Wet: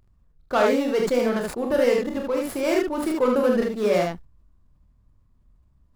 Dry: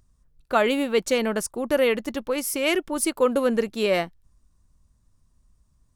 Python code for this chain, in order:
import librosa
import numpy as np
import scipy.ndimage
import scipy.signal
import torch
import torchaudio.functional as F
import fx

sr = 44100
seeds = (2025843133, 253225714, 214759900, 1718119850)

y = scipy.signal.medfilt(x, 15)
y = 10.0 ** (-11.5 / 20.0) * np.tanh(y / 10.0 ** (-11.5 / 20.0))
y = fx.room_early_taps(y, sr, ms=(29, 45, 76), db=(-6.5, -7.0, -3.0))
y = fx.sustainer(y, sr, db_per_s=140.0)